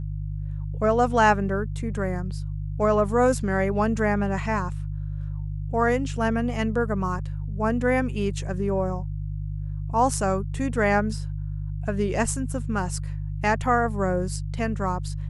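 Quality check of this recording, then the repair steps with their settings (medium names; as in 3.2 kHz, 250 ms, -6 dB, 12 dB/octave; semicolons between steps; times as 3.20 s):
hum 50 Hz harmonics 3 -30 dBFS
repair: de-hum 50 Hz, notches 3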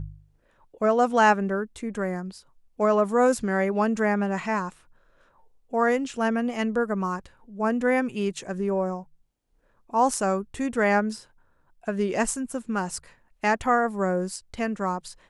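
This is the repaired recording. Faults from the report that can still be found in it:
nothing left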